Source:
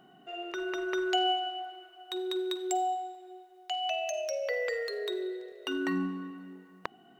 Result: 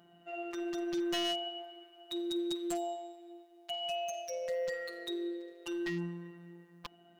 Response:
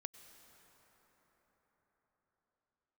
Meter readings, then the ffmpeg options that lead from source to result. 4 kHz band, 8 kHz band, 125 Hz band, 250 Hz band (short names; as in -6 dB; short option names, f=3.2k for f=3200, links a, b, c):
-3.5 dB, -3.5 dB, n/a, -1.0 dB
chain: -af "afftfilt=real='hypot(re,im)*cos(PI*b)':imag='0':win_size=1024:overlap=0.75,aeval=exprs='0.0422*(abs(mod(val(0)/0.0422+3,4)-2)-1)':c=same"